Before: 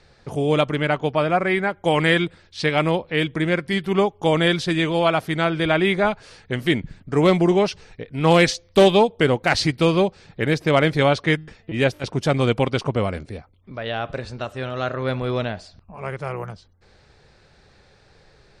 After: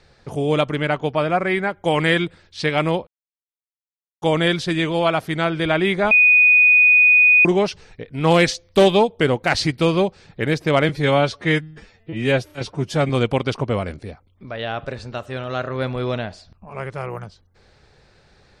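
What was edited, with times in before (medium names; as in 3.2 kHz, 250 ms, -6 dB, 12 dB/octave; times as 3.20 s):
3.07–4.22 s: mute
6.11–7.45 s: bleep 2.48 kHz -9 dBFS
10.89–12.36 s: stretch 1.5×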